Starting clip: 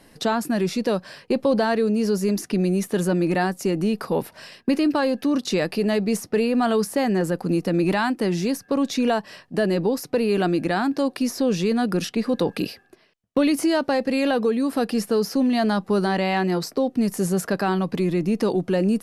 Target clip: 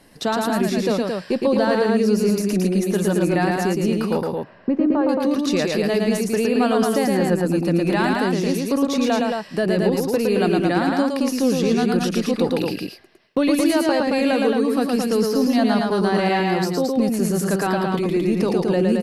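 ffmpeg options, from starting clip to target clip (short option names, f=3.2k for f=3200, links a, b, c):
-filter_complex "[0:a]asettb=1/sr,asplit=3[a][b][c];[a]atrim=end=4.214[d];[b]atrim=start=4.21:end=5.09,asetpts=PTS-STARTPTS,afade=t=in:d=0.004:c=qsin,afade=t=out:st=0.876:d=0.004:c=qsin,lowpass=1.1k[e];[c]atrim=start=5.086[f];[d][e]acrossfade=d=0.004:c1=hsin:c2=qsin[g];[g][f]acrossfade=d=0.004:c1=qsin:c2=hsin,aecho=1:1:113.7|221.6:0.708|0.631"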